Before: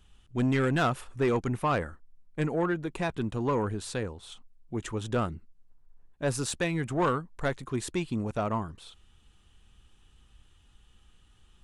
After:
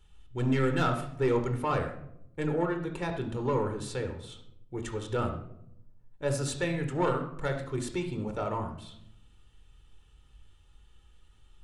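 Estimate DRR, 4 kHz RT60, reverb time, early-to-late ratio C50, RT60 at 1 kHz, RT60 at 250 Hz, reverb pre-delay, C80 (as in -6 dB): 5.0 dB, 0.45 s, 0.75 s, 8.0 dB, 0.65 s, 1.1 s, 23 ms, 11.0 dB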